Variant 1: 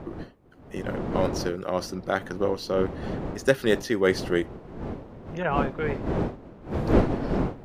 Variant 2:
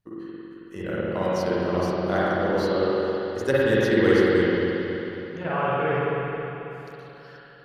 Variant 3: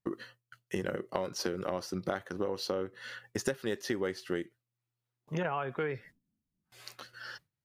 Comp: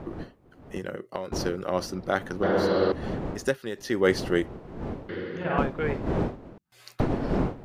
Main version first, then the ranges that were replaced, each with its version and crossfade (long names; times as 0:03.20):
1
0:00.78–0:01.32: punch in from 3
0:02.43–0:02.92: punch in from 2
0:03.48–0:03.88: punch in from 3, crossfade 0.24 s
0:05.09–0:05.58: punch in from 2
0:06.58–0:07.00: punch in from 3